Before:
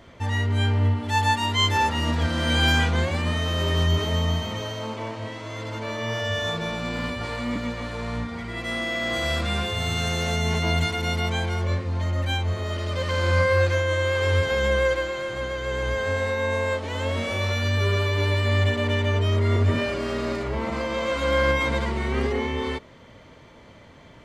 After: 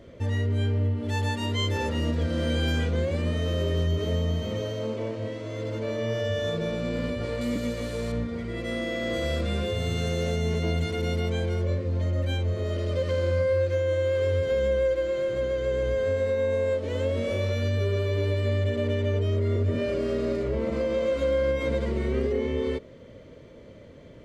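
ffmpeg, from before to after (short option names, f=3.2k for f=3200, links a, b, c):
-filter_complex "[0:a]asettb=1/sr,asplit=3[a][b][c];[a]atrim=end=7.414[d];[b]atrim=start=7.41:end=8.12,asetpts=PTS-STARTPTS,afade=t=in:d=0.004:c=qsin,afade=t=out:st=0.706:d=0.004:c=qsin,aemphasis=mode=production:type=75fm[e];[c]atrim=start=8.116[f];[d][e]acrossfade=d=0.004:c1=hsin:c2=qsin[g];[g][f]acrossfade=d=0.004:c1=qsin:c2=hsin,lowshelf=f=660:t=q:w=3:g=6.5,acompressor=threshold=-17dB:ratio=3,volume=-6dB"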